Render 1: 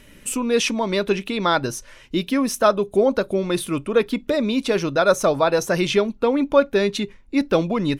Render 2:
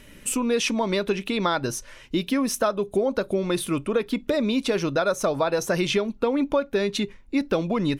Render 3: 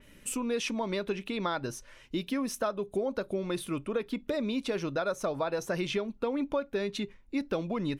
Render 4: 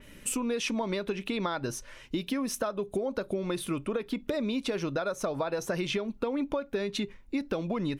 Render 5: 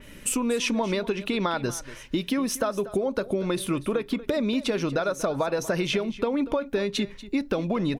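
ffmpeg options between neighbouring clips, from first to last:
ffmpeg -i in.wav -af "acompressor=threshold=-19dB:ratio=6" out.wav
ffmpeg -i in.wav -af "adynamicequalizer=threshold=0.00708:dfrequency=4000:dqfactor=0.7:tfrequency=4000:tqfactor=0.7:attack=5:release=100:ratio=0.375:range=2:mode=cutabove:tftype=highshelf,volume=-8dB" out.wav
ffmpeg -i in.wav -af "acompressor=threshold=-32dB:ratio=6,volume=5dB" out.wav
ffmpeg -i in.wav -af "aecho=1:1:238:0.15,volume=5dB" out.wav

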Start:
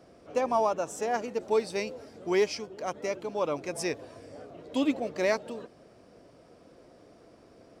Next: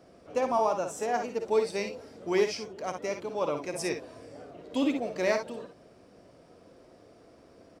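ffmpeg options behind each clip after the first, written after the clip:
ffmpeg -i in.wav -af "aecho=1:1:55|66:0.376|0.282,volume=-1dB" out.wav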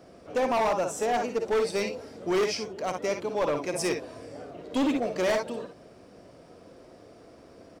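ffmpeg -i in.wav -af "asoftclip=type=hard:threshold=-26dB,volume=4.5dB" out.wav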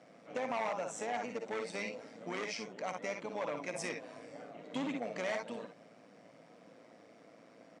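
ffmpeg -i in.wav -af "acompressor=threshold=-28dB:ratio=6,tremolo=f=110:d=0.571,highpass=frequency=150:width=0.5412,highpass=frequency=150:width=1.3066,equalizer=frequency=380:width_type=q:width=4:gain=-10,equalizer=frequency=2100:width_type=q:width=4:gain=7,equalizer=frequency=4900:width_type=q:width=4:gain=-5,lowpass=frequency=8400:width=0.5412,lowpass=frequency=8400:width=1.3066,volume=-3dB" out.wav

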